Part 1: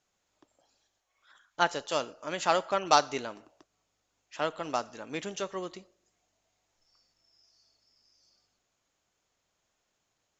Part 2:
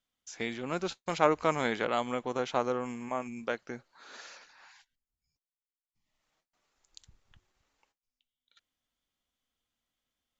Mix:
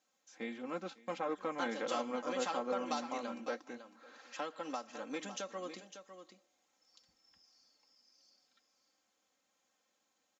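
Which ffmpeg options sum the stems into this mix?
-filter_complex "[0:a]acompressor=threshold=-36dB:ratio=4,bandreject=f=2.8k:w=23,volume=-3.5dB,asplit=2[a][b];[b]volume=-10.5dB[c];[1:a]highshelf=f=3.2k:g=-11.5,alimiter=limit=-18dB:level=0:latency=1:release=161,flanger=delay=1:depth=6.5:regen=-72:speed=1.6:shape=triangular,volume=-3.5dB,asplit=2[d][e];[e]volume=-22dB[f];[c][f]amix=inputs=2:normalize=0,aecho=0:1:554:1[g];[a][d][g]amix=inputs=3:normalize=0,highpass=180,aecho=1:1:3.8:0.79"

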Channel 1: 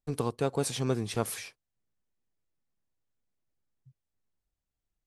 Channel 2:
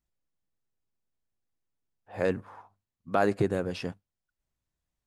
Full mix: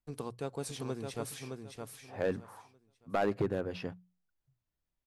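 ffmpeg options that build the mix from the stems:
-filter_complex "[0:a]volume=-9dB,asplit=2[a][b];[b]volume=-5dB[c];[1:a]equalizer=f=8.2k:w=1.1:g=-13,asoftclip=type=hard:threshold=-19dB,volume=-4dB[d];[c]aecho=0:1:615|1230|1845|2460:1|0.25|0.0625|0.0156[e];[a][d][e]amix=inputs=3:normalize=0,bandreject=f=60:t=h:w=6,bandreject=f=120:t=h:w=6,bandreject=f=180:t=h:w=6"

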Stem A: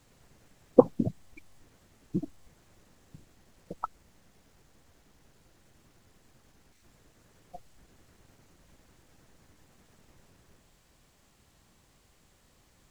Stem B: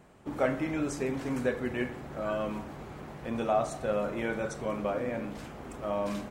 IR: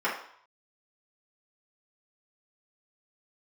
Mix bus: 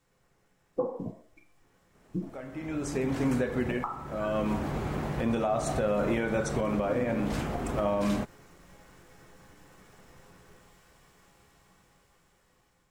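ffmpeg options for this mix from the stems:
-filter_complex "[0:a]volume=-13dB,asplit=3[a][b][c];[b]volume=-7dB[d];[1:a]acompressor=threshold=-31dB:ratio=2.5,adelay=1950,volume=-5dB[e];[c]apad=whole_len=363972[f];[e][f]sidechaincompress=threshold=-53dB:ratio=10:attack=16:release=796[g];[2:a]atrim=start_sample=2205[h];[d][h]afir=irnorm=-1:irlink=0[i];[a][g][i]amix=inputs=3:normalize=0,lowshelf=f=230:g=4.5,dynaudnorm=f=710:g=7:m=14.5dB,alimiter=limit=-18.5dB:level=0:latency=1:release=226"

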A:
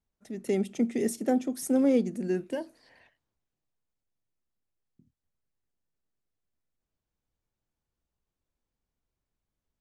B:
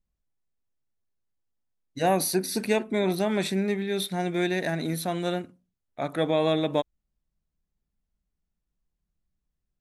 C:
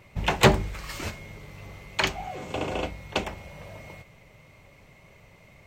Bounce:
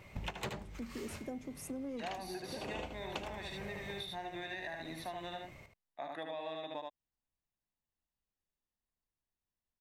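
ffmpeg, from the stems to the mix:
-filter_complex "[0:a]asoftclip=type=tanh:threshold=-15.5dB,volume=-11dB,asplit=2[a][b];[1:a]acrossover=split=310 4900:gain=0.0891 1 0.2[c][d][e];[c][d][e]amix=inputs=3:normalize=0,aecho=1:1:1.1:0.58,acontrast=67,volume=-15.5dB,asplit=2[f][g];[g]volume=-3.5dB[h];[2:a]volume=-2dB,asplit=2[i][j];[j]volume=-9dB[k];[b]apad=whole_len=249616[l];[i][l]sidechaincompress=threshold=-57dB:ratio=8:attack=29:release=167[m];[h][k]amix=inputs=2:normalize=0,aecho=0:1:75:1[n];[a][f][m][n]amix=inputs=4:normalize=0,acompressor=threshold=-39dB:ratio=6"

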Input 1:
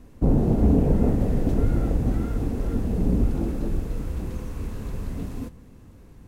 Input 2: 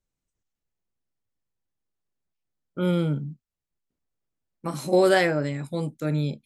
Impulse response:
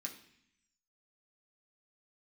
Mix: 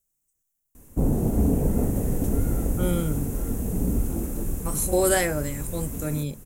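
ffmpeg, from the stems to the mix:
-filter_complex "[0:a]adelay=750,volume=-3dB,asplit=2[a][b];[b]volume=-13dB[c];[1:a]volume=-3dB[d];[c]aecho=0:1:891:1[e];[a][d][e]amix=inputs=3:normalize=0,aexciter=amount=6.8:drive=7.3:freq=6.5k"

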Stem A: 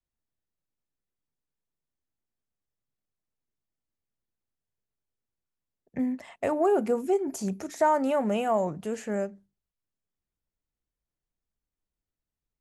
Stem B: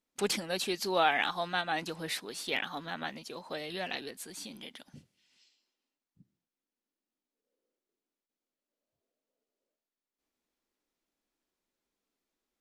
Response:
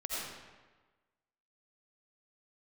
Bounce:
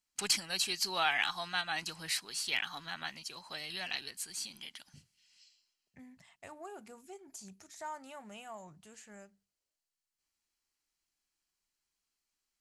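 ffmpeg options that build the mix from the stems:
-filter_complex "[0:a]volume=-15dB[a];[1:a]bandreject=f=3.6k:w=5.8,volume=-1.5dB[b];[a][b]amix=inputs=2:normalize=0,equalizer=f=250:t=o:w=1:g=-9,equalizer=f=500:t=o:w=1:g=-12,equalizer=f=4k:t=o:w=1:g=6,equalizer=f=8k:t=o:w=1:g=6"

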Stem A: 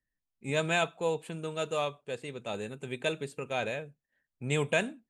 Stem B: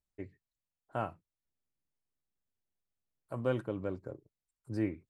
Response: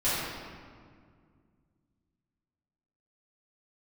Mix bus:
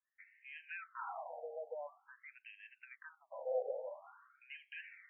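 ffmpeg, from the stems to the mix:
-filter_complex "[0:a]asoftclip=type=tanh:threshold=-22dB,acompressor=threshold=-38dB:ratio=12,volume=-1.5dB,asplit=2[a][b];[1:a]volume=-2dB,asplit=2[c][d];[d]volume=-13dB[e];[b]apad=whole_len=224718[f];[c][f]sidechaincompress=threshold=-55dB:ratio=8:attack=41:release=245[g];[2:a]atrim=start_sample=2205[h];[e][h]afir=irnorm=-1:irlink=0[i];[a][g][i]amix=inputs=3:normalize=0,afftfilt=real='re*between(b*sr/1024,600*pow(2300/600,0.5+0.5*sin(2*PI*0.48*pts/sr))/1.41,600*pow(2300/600,0.5+0.5*sin(2*PI*0.48*pts/sr))*1.41)':imag='im*between(b*sr/1024,600*pow(2300/600,0.5+0.5*sin(2*PI*0.48*pts/sr))/1.41,600*pow(2300/600,0.5+0.5*sin(2*PI*0.48*pts/sr))*1.41)':win_size=1024:overlap=0.75"

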